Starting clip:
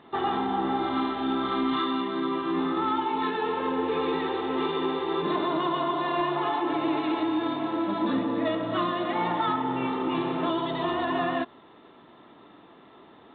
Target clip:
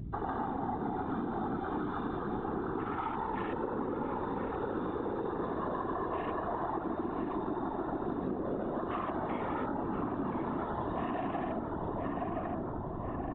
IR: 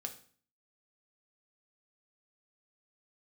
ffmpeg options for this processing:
-filter_complex "[0:a]asplit=2[link_01][link_02];[1:a]atrim=start_sample=2205,adelay=146[link_03];[link_02][link_03]afir=irnorm=-1:irlink=0,volume=6dB[link_04];[link_01][link_04]amix=inputs=2:normalize=0,afwtdn=0.0501,asplit=2[link_05][link_06];[link_06]adelay=1026,lowpass=frequency=1500:poles=1,volume=-4dB,asplit=2[link_07][link_08];[link_08]adelay=1026,lowpass=frequency=1500:poles=1,volume=0.55,asplit=2[link_09][link_10];[link_10]adelay=1026,lowpass=frequency=1500:poles=1,volume=0.55,asplit=2[link_11][link_12];[link_12]adelay=1026,lowpass=frequency=1500:poles=1,volume=0.55,asplit=2[link_13][link_14];[link_14]adelay=1026,lowpass=frequency=1500:poles=1,volume=0.55,asplit=2[link_15][link_16];[link_16]adelay=1026,lowpass=frequency=1500:poles=1,volume=0.55,asplit=2[link_17][link_18];[link_18]adelay=1026,lowpass=frequency=1500:poles=1,volume=0.55[link_19];[link_05][link_07][link_09][link_11][link_13][link_15][link_17][link_19]amix=inputs=8:normalize=0,aeval=exprs='val(0)+0.0224*(sin(2*PI*60*n/s)+sin(2*PI*2*60*n/s)/2+sin(2*PI*3*60*n/s)/3+sin(2*PI*4*60*n/s)/4+sin(2*PI*5*60*n/s)/5)':channel_layout=same,afftfilt=real='hypot(re,im)*cos(2*PI*random(0))':imag='hypot(re,im)*sin(2*PI*random(1))':win_size=512:overlap=0.75,acompressor=threshold=-32dB:ratio=6"

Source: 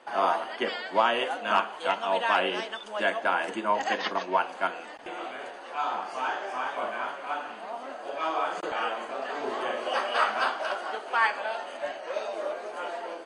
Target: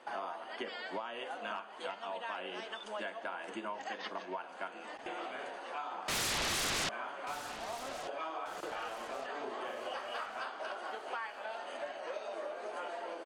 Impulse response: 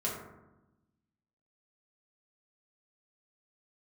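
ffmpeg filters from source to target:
-filter_complex "[0:a]acompressor=threshold=-35dB:ratio=10,asettb=1/sr,asplit=3[link_01][link_02][link_03];[link_01]atrim=end=6.084[link_04];[link_02]atrim=start=6.08:end=6.89,asetpts=PTS-STARTPTS,afade=type=in:duration=0.004:curve=qsin,afade=type=out:start_time=0.806:duration=0.004:curve=qsin,aeval=exprs='0.0376*sin(PI/2*7.94*val(0)/0.0376)':channel_layout=same[link_05];[link_03]atrim=start=6.886[link_06];[link_04][link_05]acrossfade=duration=0.004:curve1=hsin:curve2=qsin[link_07];[link_07][link_06]acrossfade=duration=0.004:curve1=qsin:curve2=hsin,asplit=2[link_08][link_09];[link_09]aecho=0:1:1187|2374|3561|4748:0.178|0.0782|0.0344|0.0151[link_10];[link_08][link_10]amix=inputs=2:normalize=0,volume=-2.5dB"

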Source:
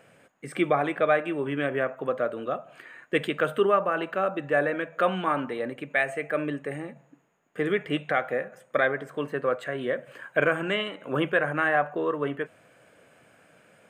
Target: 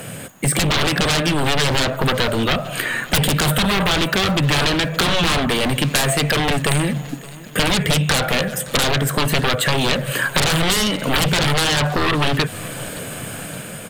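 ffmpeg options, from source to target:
ffmpeg -i in.wav -filter_complex "[0:a]aemphasis=mode=production:type=cd,afftfilt=real='re*lt(hypot(re,im),0.447)':imag='im*lt(hypot(re,im),0.447)':win_size=1024:overlap=0.75,bass=frequency=250:gain=12,treble=frequency=4000:gain=-3,aeval=exprs='0.316*sin(PI/2*7.08*val(0)/0.316)':channel_layout=same,dynaudnorm=framelen=480:gausssize=3:maxgain=3.5dB,aexciter=amount=2.1:drive=5.3:freq=3100,acrossover=split=140|1500[link_01][link_02][link_03];[link_01]acompressor=threshold=-19dB:ratio=4[link_04];[link_02]acompressor=threshold=-21dB:ratio=4[link_05];[link_03]acompressor=threshold=-18dB:ratio=4[link_06];[link_04][link_05][link_06]amix=inputs=3:normalize=0,asplit=2[link_07][link_08];[link_08]aecho=0:1:569|1138|1707|2276:0.1|0.049|0.024|0.0118[link_09];[link_07][link_09]amix=inputs=2:normalize=0,volume=-1dB" out.wav

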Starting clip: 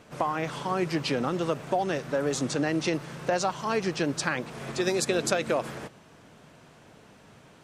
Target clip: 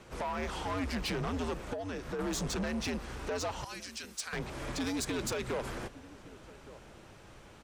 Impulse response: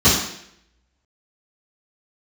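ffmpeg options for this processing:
-filter_complex "[0:a]asettb=1/sr,asplit=3[link_01][link_02][link_03];[link_01]atrim=end=1.734[link_04];[link_02]atrim=start=1.73:end=2.19,asetpts=PTS-STARTPTS,afade=type=in:duration=0.004:curve=qsin,afade=type=out:start_time=0.456:duration=0.004:curve=qsin,acompressor=threshold=-31dB:ratio=12[link_05];[link_03]atrim=start=2.186[link_06];[link_04][link_05]acrossfade=duration=0.004:curve1=hsin:curve2=qsin[link_07];[link_07][link_06]acrossfade=duration=0.004:curve1=qsin:curve2=hsin,asettb=1/sr,asplit=3[link_08][link_09][link_10];[link_08]atrim=end=3.644[link_11];[link_09]atrim=start=3.64:end=4.33,asetpts=PTS-STARTPTS,afade=type=in:duration=0.004:curve=qsin,afade=type=out:start_time=0.686:duration=0.004:curve=qsin,aderivative[link_12];[link_10]atrim=start=4.326[link_13];[link_11][link_12]acrossfade=duration=0.004:curve1=hsin:curve2=qsin[link_14];[link_14][link_13]acrossfade=duration=0.004:curve1=qsin:curve2=hsin,alimiter=limit=-16.5dB:level=0:latency=1:release=411,afreqshift=-95,asplit=2[link_15][link_16];[link_16]adelay=1166,volume=-24dB,highshelf=frequency=4000:gain=-26.2[link_17];[link_15][link_17]amix=inputs=2:normalize=0,asoftclip=type=tanh:threshold=-30.5dB"

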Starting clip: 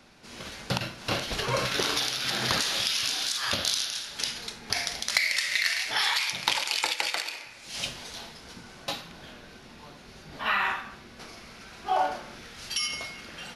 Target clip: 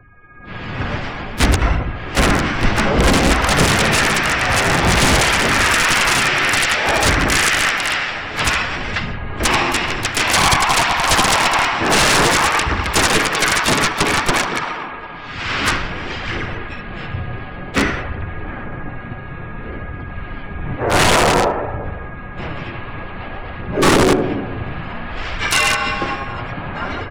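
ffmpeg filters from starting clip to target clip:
ffmpeg -i in.wav -filter_complex "[0:a]aeval=exprs='val(0)+0.00282*sin(2*PI*3300*n/s)':channel_layout=same,aphaser=in_gain=1:out_gain=1:delay=4.4:decay=0.42:speed=1.1:type=triangular,aeval=exprs='(mod(9.44*val(0)+1,2)-1)/9.44':channel_layout=same,afftfilt=real='re*gte(hypot(re,im),0.00251)':imag='im*gte(hypot(re,im),0.00251)':win_size=1024:overlap=0.75,asetrate=22050,aresample=44100,equalizer=frequency=200:width=0.55:gain=2.5,asoftclip=type=tanh:threshold=-18.5dB,lowshelf=frequency=110:gain=8.5,asplit=2[link_01][link_02];[link_02]adelay=77,lowpass=frequency=890:poles=1,volume=-11dB,asplit=2[link_03][link_04];[link_04]adelay=77,lowpass=frequency=890:poles=1,volume=0.46,asplit=2[link_05][link_06];[link_06]adelay=77,lowpass=frequency=890:poles=1,volume=0.46,asplit=2[link_07][link_08];[link_08]adelay=77,lowpass=frequency=890:poles=1,volume=0.46,asplit=2[link_09][link_10];[link_10]adelay=77,lowpass=frequency=890:poles=1,volume=0.46[link_11];[link_03][link_05][link_07][link_09][link_11]amix=inputs=5:normalize=0[link_12];[link_01][link_12]amix=inputs=2:normalize=0,dynaudnorm=framelen=120:gausssize=7:maxgain=14dB,asplit=4[link_13][link_14][link_15][link_16];[link_14]asetrate=33038,aresample=44100,atempo=1.33484,volume=-3dB[link_17];[link_15]asetrate=58866,aresample=44100,atempo=0.749154,volume=-12dB[link_18];[link_16]asetrate=66075,aresample=44100,atempo=0.66742,volume=-16dB[link_19];[link_13][link_17][link_18][link_19]amix=inputs=4:normalize=0,volume=-2dB" out.wav

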